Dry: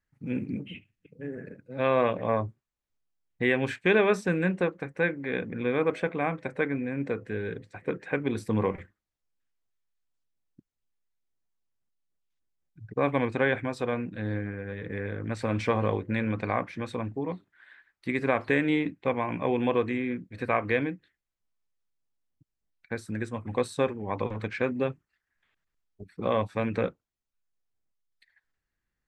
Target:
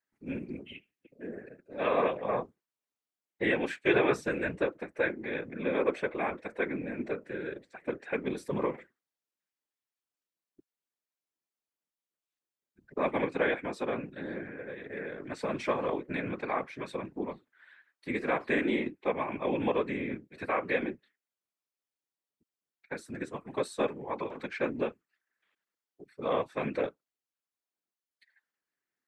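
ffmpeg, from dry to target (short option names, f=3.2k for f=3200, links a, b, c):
-af "highpass=f=230:w=0.5412,highpass=f=230:w=1.3066,afftfilt=real='hypot(re,im)*cos(2*PI*random(0))':imag='hypot(re,im)*sin(2*PI*random(1))':win_size=512:overlap=0.75,volume=3dB"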